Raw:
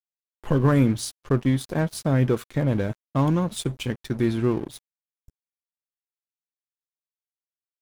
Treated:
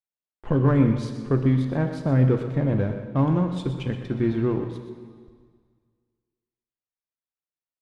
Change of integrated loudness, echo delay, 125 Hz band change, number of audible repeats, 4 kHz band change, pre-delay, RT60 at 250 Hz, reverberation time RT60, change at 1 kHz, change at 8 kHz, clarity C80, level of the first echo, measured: +0.5 dB, 124 ms, +1.5 dB, 1, −8.0 dB, 8 ms, 1.8 s, 1.8 s, −1.5 dB, below −15 dB, 7.0 dB, −11.0 dB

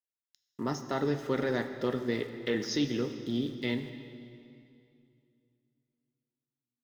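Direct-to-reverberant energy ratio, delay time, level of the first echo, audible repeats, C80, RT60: 8.0 dB, no echo audible, no echo audible, no echo audible, 10.0 dB, 2.5 s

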